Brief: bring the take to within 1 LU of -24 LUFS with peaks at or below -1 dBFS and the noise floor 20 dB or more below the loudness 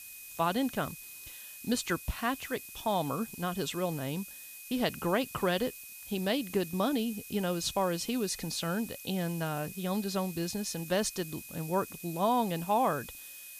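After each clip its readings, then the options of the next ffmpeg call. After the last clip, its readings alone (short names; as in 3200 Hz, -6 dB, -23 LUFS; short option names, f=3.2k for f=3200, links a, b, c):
steady tone 2500 Hz; tone level -52 dBFS; noise floor -48 dBFS; noise floor target -53 dBFS; loudness -32.5 LUFS; peak -16.5 dBFS; loudness target -24.0 LUFS
-> -af "bandreject=f=2.5k:w=30"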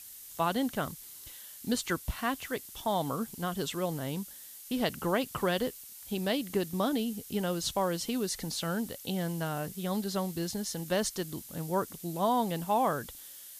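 steady tone none; noise floor -48 dBFS; noise floor target -53 dBFS
-> -af "afftdn=nr=6:nf=-48"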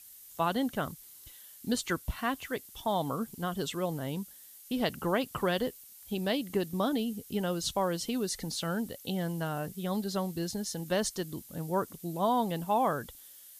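noise floor -53 dBFS; loudness -33.0 LUFS; peak -16.5 dBFS; loudness target -24.0 LUFS
-> -af "volume=9dB"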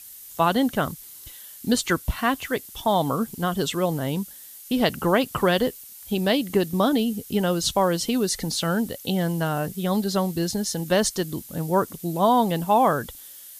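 loudness -24.0 LUFS; peak -7.5 dBFS; noise floor -44 dBFS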